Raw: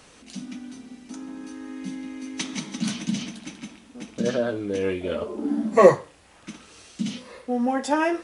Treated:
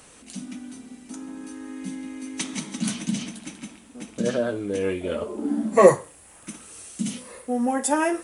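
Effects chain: resonant high shelf 6800 Hz +7 dB, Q 1.5, from 5.87 s +13.5 dB

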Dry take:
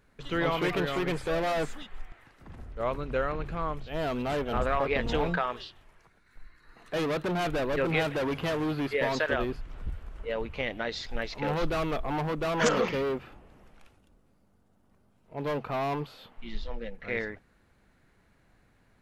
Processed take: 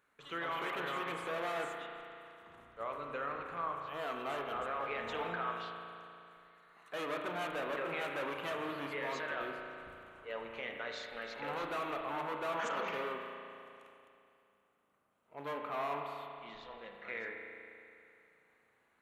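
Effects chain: HPF 780 Hz 6 dB/oct; bell 1200 Hz +5.5 dB 0.43 oct; limiter -23.5 dBFS, peak gain reduction 10.5 dB; bell 5000 Hz -9.5 dB 0.45 oct; spring tank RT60 2.7 s, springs 35 ms, chirp 50 ms, DRR 2 dB; gain -6 dB

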